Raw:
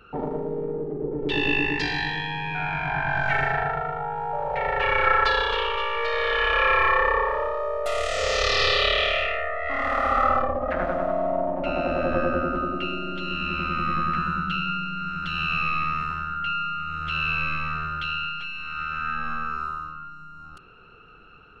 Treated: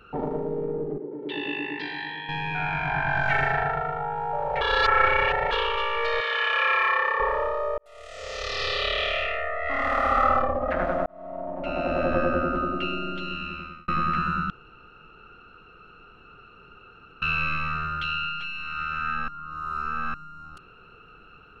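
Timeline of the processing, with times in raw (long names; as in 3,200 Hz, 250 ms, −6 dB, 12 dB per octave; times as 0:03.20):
0:00.98–0:02.29: loudspeaker in its box 340–3,200 Hz, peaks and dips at 460 Hz −7 dB, 720 Hz −10 dB, 1,200 Hz −10 dB, 1,700 Hz −5 dB, 2,600 Hz −8 dB
0:04.61–0:05.51: reverse
0:06.20–0:07.20: high-pass filter 1,100 Hz 6 dB per octave
0:07.78–0:09.70: fade in
0:11.06–0:12.00: fade in
0:13.05–0:13.88: fade out
0:14.50–0:17.22: fill with room tone
0:19.28–0:20.14: reverse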